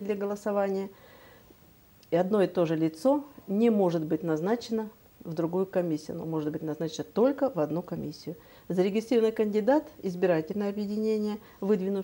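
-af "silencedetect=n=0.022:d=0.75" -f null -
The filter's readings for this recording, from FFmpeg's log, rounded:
silence_start: 0.87
silence_end: 2.12 | silence_duration: 1.26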